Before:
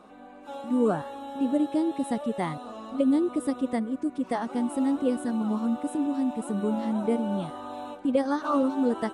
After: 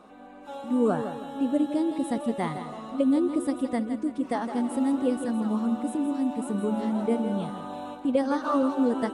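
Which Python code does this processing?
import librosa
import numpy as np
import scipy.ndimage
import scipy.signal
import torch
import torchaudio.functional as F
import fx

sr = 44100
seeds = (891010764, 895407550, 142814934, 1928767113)

y = fx.echo_feedback(x, sr, ms=163, feedback_pct=39, wet_db=-10)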